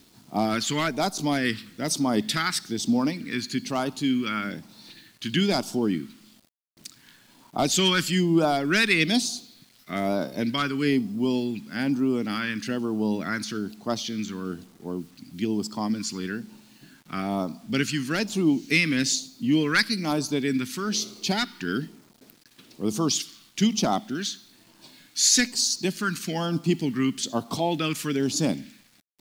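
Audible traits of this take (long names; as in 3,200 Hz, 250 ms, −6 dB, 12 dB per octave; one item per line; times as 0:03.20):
phaser sweep stages 2, 1.1 Hz, lowest notch 670–1,800 Hz
a quantiser's noise floor 10 bits, dither none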